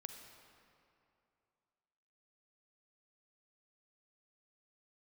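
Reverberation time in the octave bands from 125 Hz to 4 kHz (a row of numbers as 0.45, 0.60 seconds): 2.7, 2.6, 2.7, 2.7, 2.2, 1.7 seconds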